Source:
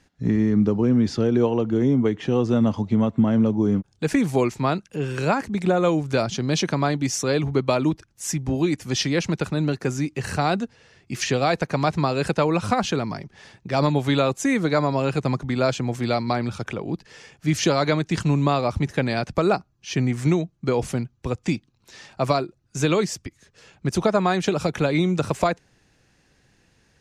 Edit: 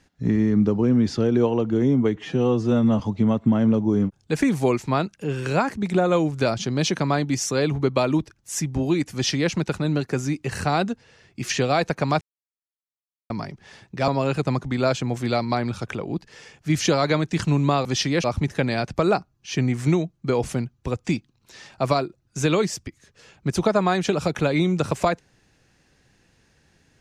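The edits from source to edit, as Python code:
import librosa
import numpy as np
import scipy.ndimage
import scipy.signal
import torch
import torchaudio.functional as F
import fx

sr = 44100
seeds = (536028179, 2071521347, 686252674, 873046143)

y = fx.edit(x, sr, fx.stretch_span(start_s=2.16, length_s=0.56, factor=1.5),
    fx.duplicate(start_s=8.85, length_s=0.39, to_s=18.63),
    fx.silence(start_s=11.93, length_s=1.09),
    fx.cut(start_s=13.8, length_s=1.06), tone=tone)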